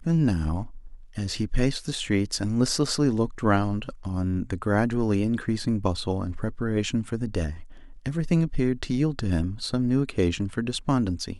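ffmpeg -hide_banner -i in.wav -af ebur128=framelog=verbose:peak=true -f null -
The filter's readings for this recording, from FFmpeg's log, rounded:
Integrated loudness:
  I:         -26.2 LUFS
  Threshold: -36.5 LUFS
Loudness range:
  LRA:         2.7 LU
  Threshold: -46.4 LUFS
  LRA low:   -27.9 LUFS
  LRA high:  -25.2 LUFS
True peak:
  Peak:       -7.7 dBFS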